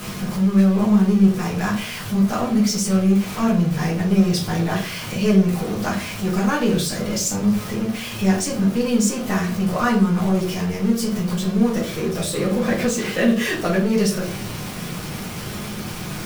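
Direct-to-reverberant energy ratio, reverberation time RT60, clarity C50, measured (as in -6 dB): -5.0 dB, 0.45 s, 8.5 dB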